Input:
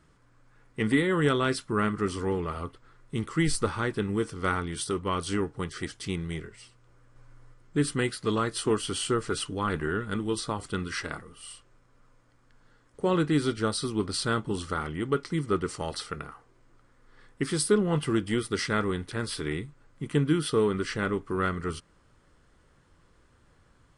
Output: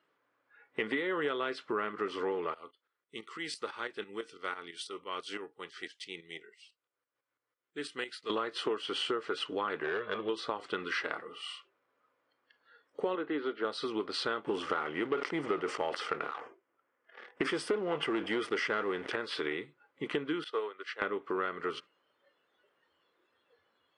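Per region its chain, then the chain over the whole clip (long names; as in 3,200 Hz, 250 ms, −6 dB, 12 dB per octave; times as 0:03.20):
0:02.54–0:08.30: first-order pre-emphasis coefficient 0.8 + shaped tremolo saw up 6 Hz, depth 70%
0:09.83–0:10.29: Butterworth low-pass 4,200 Hz + comb filter 1.8 ms, depth 68% + hard clipping −26 dBFS
0:13.15–0:13.65: high-pass filter 240 Hz + high-frequency loss of the air 390 metres + notch filter 2,400 Hz, Q 18
0:14.44–0:19.16: parametric band 4,000 Hz −13 dB 0.29 octaves + leveller curve on the samples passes 2 + level that may fall only so fast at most 100 dB per second
0:20.44–0:21.02: high-pass filter 540 Hz + expander for the loud parts 2.5 to 1, over −39 dBFS
whole clip: noise reduction from a noise print of the clip's start 16 dB; Chebyshev band-pass filter 440–3,100 Hz, order 2; downward compressor 5 to 1, threshold −40 dBFS; level +8.5 dB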